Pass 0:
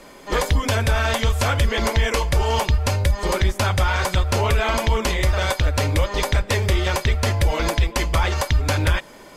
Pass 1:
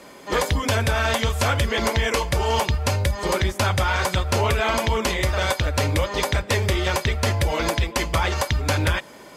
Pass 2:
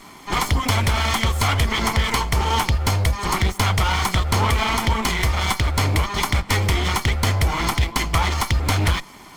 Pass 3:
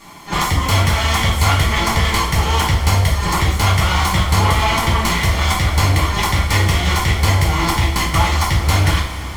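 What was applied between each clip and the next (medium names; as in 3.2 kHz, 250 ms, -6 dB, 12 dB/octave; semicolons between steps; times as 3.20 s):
high-pass 76 Hz
comb filter that takes the minimum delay 0.93 ms; trim +3 dB
two-slope reverb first 0.41 s, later 4.9 s, from -18 dB, DRR -4.5 dB; trim -1.5 dB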